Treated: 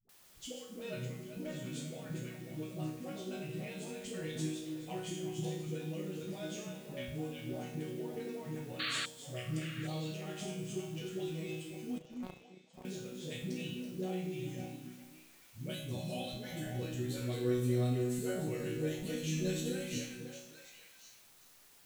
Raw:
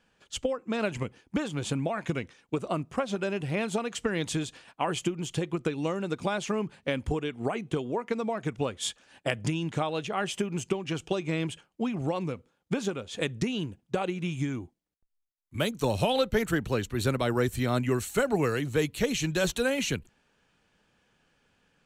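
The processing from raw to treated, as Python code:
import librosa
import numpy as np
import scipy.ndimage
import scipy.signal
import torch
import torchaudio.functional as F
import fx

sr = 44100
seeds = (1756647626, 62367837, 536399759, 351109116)

p1 = fx.reverse_delay(x, sr, ms=209, wet_db=-9.0)
p2 = fx.peak_eq(p1, sr, hz=1100.0, db=-14.5, octaves=1.4)
p3 = fx.resonator_bank(p2, sr, root=47, chord='major', decay_s=0.65)
p4 = fx.dmg_noise_colour(p3, sr, seeds[0], colour='white', level_db=-71.0)
p5 = fx.notch_comb(p4, sr, f0_hz=460.0, at=(15.66, 16.74))
p6 = fx.dispersion(p5, sr, late='highs', ms=92.0, hz=370.0)
p7 = fx.spec_paint(p6, sr, seeds[1], shape='noise', start_s=8.79, length_s=0.27, low_hz=1100.0, high_hz=4600.0, level_db=-46.0)
p8 = fx.power_curve(p7, sr, exponent=3.0, at=(11.98, 12.85))
p9 = p8 + fx.echo_stepped(p8, sr, ms=272, hz=270.0, octaves=1.4, feedback_pct=70, wet_db=-3.0, dry=0)
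y = p9 * 10.0 ** (9.0 / 20.0)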